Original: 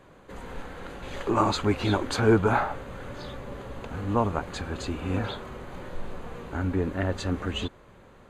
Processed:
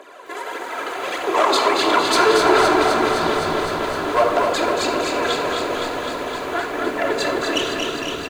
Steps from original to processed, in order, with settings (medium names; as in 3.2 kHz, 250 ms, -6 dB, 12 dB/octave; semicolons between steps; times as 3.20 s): in parallel at +1 dB: compression, threshold -37 dBFS, peak gain reduction 20 dB; on the sum: phaser 1.6 Hz, delay 3 ms, feedback 71%; valve stage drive 17 dB, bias 0.6; high-pass 410 Hz 24 dB/octave; on a send: frequency-shifting echo 229 ms, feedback 60%, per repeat -69 Hz, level -7 dB; on the sum: simulated room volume 3500 m³, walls furnished, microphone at 3 m; bit-crushed delay 257 ms, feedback 80%, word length 9-bit, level -6 dB; trim +6.5 dB